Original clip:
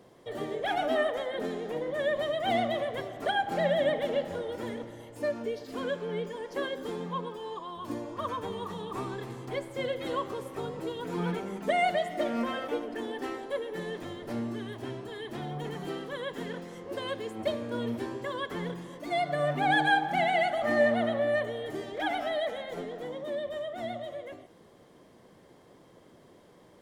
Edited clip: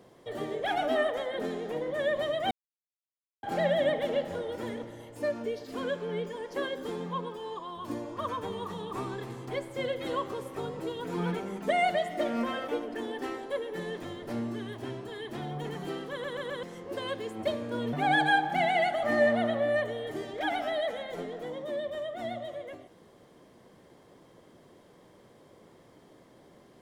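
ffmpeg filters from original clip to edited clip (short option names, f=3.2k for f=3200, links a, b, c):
-filter_complex "[0:a]asplit=8[a][b][c][d][e][f][g][h];[a]atrim=end=2.51,asetpts=PTS-STARTPTS,afade=t=out:st=2.506:d=0.004:c=hsin[i];[b]atrim=start=2.51:end=3.43,asetpts=PTS-STARTPTS,volume=0[j];[c]atrim=start=3.43:end=16.242,asetpts=PTS-STARTPTS,afade=t=in:d=0.004:c=hsin[k];[d]atrim=start=16.108:end=16.242[l];[e]atrim=start=16.108:end=16.242[m];[f]atrim=start=16.108:end=16.242[n];[g]atrim=start=16.628:end=17.932[o];[h]atrim=start=19.518[p];[i][j][k]concat=n=3:v=0:a=1[q];[q][l]acrossfade=d=0.004:c1=hsin:c2=hsin[r];[r][m]acrossfade=d=0.004:c1=hsin:c2=hsin[s];[s][n]acrossfade=d=0.004:c1=hsin:c2=hsin[t];[t][o]acrossfade=d=0.004:c1=hsin:c2=hsin[u];[u][p]acrossfade=d=0.004:c1=hsin:c2=hsin"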